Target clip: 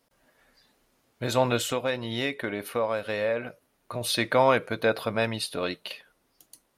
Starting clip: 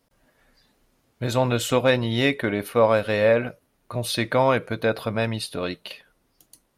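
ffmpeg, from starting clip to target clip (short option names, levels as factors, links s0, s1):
-filter_complex "[0:a]lowshelf=f=210:g=-8.5,asettb=1/sr,asplit=3[s0][s1][s2];[s0]atrim=end=1.604[s3];[s1]atrim=start=1.6:end=4.01,asetpts=PTS-STARTPTS,afade=t=in:d=0.004:c=qsin,afade=t=out:st=2.406:d=0.004:c=qsin,acompressor=threshold=0.0316:ratio=2[s4];[s2]atrim=start=4.006[s5];[s3][s4]acrossfade=d=0.004:c1=hsin:c2=qsin[s6];[s6][s5]acrossfade=d=0.004:c1=qsin:c2=hsin"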